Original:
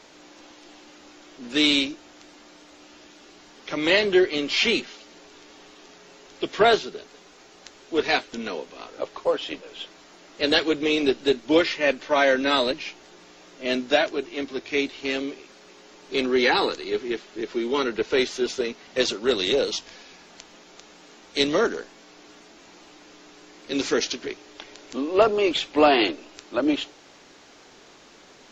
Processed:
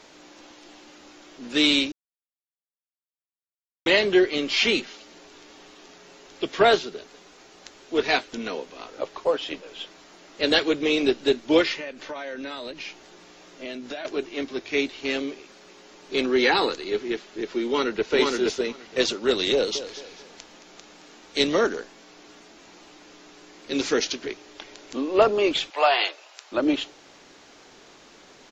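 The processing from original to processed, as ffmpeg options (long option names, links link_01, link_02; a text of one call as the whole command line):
ffmpeg -i in.wav -filter_complex "[0:a]asettb=1/sr,asplit=3[link_01][link_02][link_03];[link_01]atrim=end=11.794[link_04];[link_02]atrim=start=11.79:end=14.05,asetpts=PTS-STARTPTS,afade=type=in:duration=0.004:curve=qsin,afade=type=out:start_time=2.256:duration=0.004:curve=qsin,acompressor=threshold=-31dB:ratio=8:attack=3.2:release=140:knee=1:detection=peak[link_05];[link_03]atrim=start=14.046[link_06];[link_04][link_05]acrossfade=duration=0.004:curve1=hsin:curve2=qsin[link_07];[link_07][link_06]acrossfade=duration=0.004:curve1=qsin:curve2=hsin,asplit=2[link_08][link_09];[link_09]afade=type=in:start_time=17.66:duration=0.01,afade=type=out:start_time=18.1:duration=0.01,aecho=0:1:470|940:0.841395|0.0841395[link_10];[link_08][link_10]amix=inputs=2:normalize=0,asettb=1/sr,asplit=3[link_11][link_12][link_13];[link_11]atrim=end=19.534[link_14];[link_12]atrim=start=19.53:end=21.57,asetpts=PTS-STARTPTS,afade=type=in:duration=0.004:curve=qsin,afade=type=out:start_time=2.036:duration=0.004:curve=qsin,aecho=1:1:220|440|660|880:0.237|0.0854|0.0307|0.0111,atrim=end_sample=89964[link_15];[link_13]atrim=start=21.566[link_16];[link_14][link_15]acrossfade=duration=0.004:curve1=hsin:curve2=qsin[link_17];[link_17][link_16]acrossfade=duration=0.004:curve1=qsin:curve2=hsin,asettb=1/sr,asplit=3[link_18][link_19][link_20];[link_18]atrim=end=25.704[link_21];[link_19]atrim=start=25.7:end=26.52,asetpts=PTS-STARTPTS,afade=type=in:duration=0.004:curve=qsin,afade=type=out:start_time=0.816:duration=0.004:curve=qsin,highpass=frequency=610:width=0.5412,highpass=frequency=610:width=1.3066[link_22];[link_20]atrim=start=26.516[link_23];[link_21][link_22]acrossfade=duration=0.004:curve1=hsin:curve2=qsin[link_24];[link_24][link_23]acrossfade=duration=0.004:curve1=qsin:curve2=hsin,asplit=3[link_25][link_26][link_27];[link_25]atrim=end=1.92,asetpts=PTS-STARTPTS,afade=type=out:start_time=1.916:duration=0.004:curve=hsin[link_28];[link_26]atrim=start=1.92:end=3.86,asetpts=PTS-STARTPTS,volume=0[link_29];[link_27]atrim=start=3.86,asetpts=PTS-STARTPTS,afade=type=in:duration=0.004:curve=hsin[link_30];[link_28][link_29][link_30]concat=n=3:v=0:a=1" out.wav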